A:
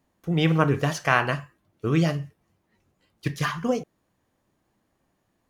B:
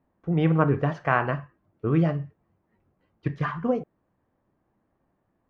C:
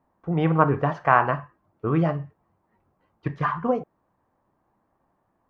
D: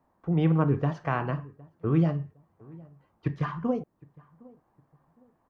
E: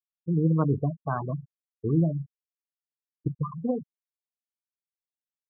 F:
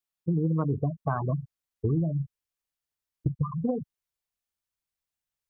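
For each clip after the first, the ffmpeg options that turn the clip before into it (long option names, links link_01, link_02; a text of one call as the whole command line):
ffmpeg -i in.wav -af "lowpass=1500" out.wav
ffmpeg -i in.wav -af "equalizer=frequency=960:width_type=o:width=1.2:gain=9,volume=-1dB" out.wav
ffmpeg -i in.wav -filter_complex "[0:a]acrossover=split=400|3000[link_01][link_02][link_03];[link_02]acompressor=threshold=-55dB:ratio=1.5[link_04];[link_01][link_04][link_03]amix=inputs=3:normalize=0,asplit=2[link_05][link_06];[link_06]adelay=761,lowpass=frequency=980:poles=1,volume=-23dB,asplit=2[link_07][link_08];[link_08]adelay=761,lowpass=frequency=980:poles=1,volume=0.34[link_09];[link_05][link_07][link_09]amix=inputs=3:normalize=0" out.wav
ffmpeg -i in.wav -af "afftfilt=real='re*gte(hypot(re,im),0.1)':imag='im*gte(hypot(re,im),0.1)':win_size=1024:overlap=0.75" out.wav
ffmpeg -i in.wav -af "asubboost=boost=4:cutoff=120,acompressor=threshold=-29dB:ratio=6,volume=5.5dB" out.wav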